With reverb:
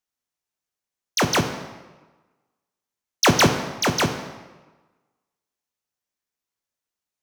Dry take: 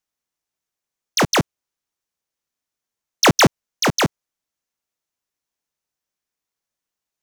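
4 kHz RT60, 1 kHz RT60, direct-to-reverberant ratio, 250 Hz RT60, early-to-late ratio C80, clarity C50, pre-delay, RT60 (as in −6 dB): 0.95 s, 1.3 s, 6.0 dB, 1.2 s, 10.0 dB, 8.5 dB, 6 ms, 1.2 s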